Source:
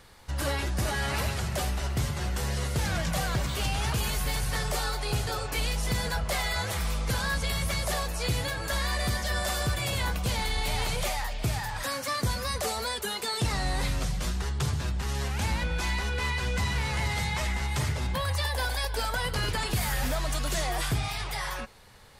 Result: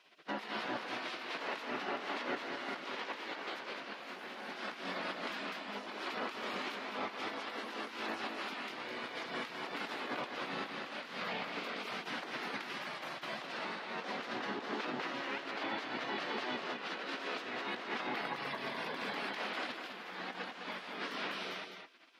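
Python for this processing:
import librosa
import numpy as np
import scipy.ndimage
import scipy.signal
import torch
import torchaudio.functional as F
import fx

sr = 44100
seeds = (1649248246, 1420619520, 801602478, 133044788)

p1 = fx.spec_gate(x, sr, threshold_db=-20, keep='weak')
p2 = scipy.signal.sosfilt(scipy.signal.butter(4, 180.0, 'highpass', fs=sr, output='sos'), p1)
p3 = fx.high_shelf(p2, sr, hz=5400.0, db=-3.5)
p4 = fx.over_compress(p3, sr, threshold_db=-42.0, ratio=-0.5)
p5 = fx.air_absorb(p4, sr, metres=320.0)
p6 = p5 + fx.echo_single(p5, sr, ms=208, db=-6.5, dry=0)
y = p6 * 10.0 ** (5.5 / 20.0)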